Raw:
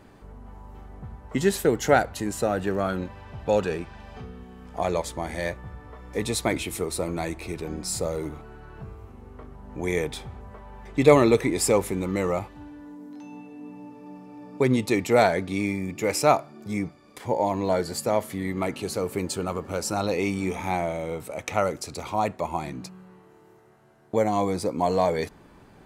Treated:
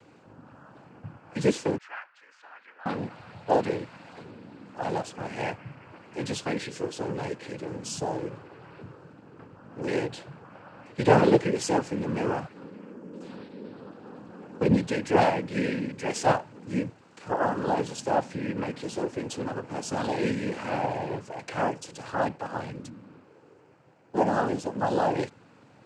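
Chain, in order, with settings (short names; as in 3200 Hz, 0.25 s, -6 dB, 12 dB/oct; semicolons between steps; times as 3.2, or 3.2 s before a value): harmonic-percussive split percussive -6 dB; noise vocoder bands 8; 1.78–2.86 ladder band-pass 1800 Hz, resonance 45%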